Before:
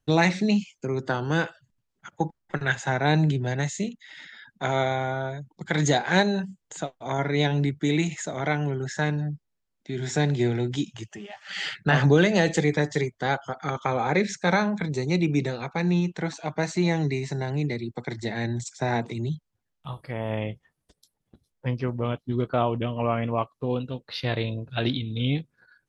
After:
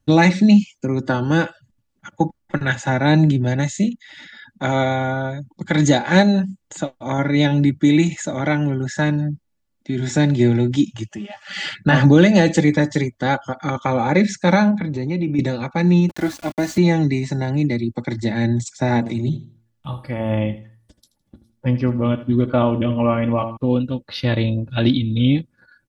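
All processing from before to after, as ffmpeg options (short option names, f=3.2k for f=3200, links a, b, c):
-filter_complex "[0:a]asettb=1/sr,asplit=3[a][b][c];[a]atrim=end=14.714[d];[b]atrim=start=14.71:end=15.39,asetpts=PTS-STARTPTS,afade=t=in:d=0.004:c=qsin,afade=t=out:st=0.676:d=0.004:c=qsin,lowpass=3.4k,bandreject=f=269.7:t=h:w=4,bandreject=f=539.4:t=h:w=4,bandreject=f=809.1:t=h:w=4,bandreject=f=1.0788k:t=h:w=4,bandreject=f=1.3485k:t=h:w=4,bandreject=f=1.6182k:t=h:w=4,bandreject=f=1.8879k:t=h:w=4,bandreject=f=2.1576k:t=h:w=4,bandreject=f=2.4273k:t=h:w=4,acompressor=threshold=-28dB:ratio=3:attack=3.2:release=140:knee=1:detection=peak[e];[c]atrim=start=15.386[f];[d][e]acrossfade=d=0.004:c1=hsin:c2=qsin[g];[g][f]acrossfade=d=0.004:c1=qsin:c2=hsin,asettb=1/sr,asplit=3[h][i][j];[h]atrim=end=16.094[k];[i]atrim=start=16.09:end=16.78,asetpts=PTS-STARTPTS,afade=t=in:d=0.004:c=qsin,afade=t=out:st=0.686:d=0.004:c=qsin,aecho=1:1:2.9:0.56,atrim=end_sample=30429,acrossover=split=450|3000[l][m][n];[m]acompressor=threshold=-28dB:ratio=6:attack=3.2:release=140:knee=2.83:detection=peak[o];[l][o][n]amix=inputs=3:normalize=0,aeval=exprs='val(0)*gte(abs(val(0)),0.0133)':c=same[p];[j]atrim=start=16.776[q];[k][p]acrossfade=d=0.004:c1=hsin:c2=qsin[r];[r][q]acrossfade=d=0.004:c1=qsin:c2=hsin,asettb=1/sr,asplit=3[s][t][u];[s]atrim=end=18.984[v];[t]atrim=start=18.98:end=23.57,asetpts=PTS-STARTPTS,afade=t=in:d=0.004:c=qsin,afade=t=out:st=4.586:d=0.004:c=qsin,bandreject=f=113.7:t=h:w=4,bandreject=f=227.4:t=h:w=4,bandreject=f=341.1:t=h:w=4,bandreject=f=454.8:t=h:w=4,bandreject=f=568.5:t=h:w=4,bandreject=f=682.2:t=h:w=4,bandreject=f=795.9:t=h:w=4,bandreject=f=909.6:t=h:w=4,bandreject=f=1.0233k:t=h:w=4,bandreject=f=1.137k:t=h:w=4,bandreject=f=1.2507k:t=h:w=4,bandreject=f=1.3644k:t=h:w=4,bandreject=f=1.4781k:t=h:w=4,bandreject=f=1.5918k:t=h:w=4,bandreject=f=1.7055k:t=h:w=4,bandreject=f=1.8192k:t=h:w=4,bandreject=f=1.9329k:t=h:w=4,aecho=1:1:80|160|240:0.188|0.0471|0.0118,atrim=end_sample=202419[w];[u]atrim=start=23.566[x];[v][w]acrossfade=d=0.004:c1=hsin:c2=qsin[y];[y][x]acrossfade=d=0.004:c1=qsin:c2=hsin,equalizer=f=130:w=0.66:g=11,aecho=1:1:3.5:0.58,volume=3dB"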